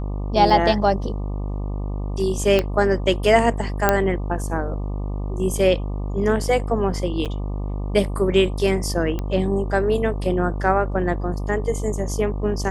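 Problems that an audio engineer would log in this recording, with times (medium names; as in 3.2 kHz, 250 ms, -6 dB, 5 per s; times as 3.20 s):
buzz 50 Hz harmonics 24 -26 dBFS
0.50 s: dropout 2.2 ms
2.59 s: pop -7 dBFS
3.89 s: pop -2 dBFS
7.25–7.26 s: dropout 7.5 ms
9.19 s: pop -14 dBFS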